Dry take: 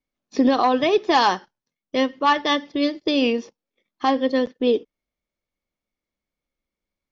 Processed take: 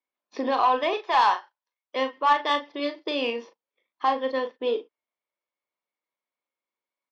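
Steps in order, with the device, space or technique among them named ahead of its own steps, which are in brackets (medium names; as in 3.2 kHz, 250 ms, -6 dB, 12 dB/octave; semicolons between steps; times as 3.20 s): 0.93–1.96 s: high-pass 580 Hz 12 dB/octave; intercom (band-pass 480–3600 Hz; peaking EQ 990 Hz +8 dB 0.26 oct; saturation -9.5 dBFS, distortion -18 dB; doubling 38 ms -8 dB); trim -3 dB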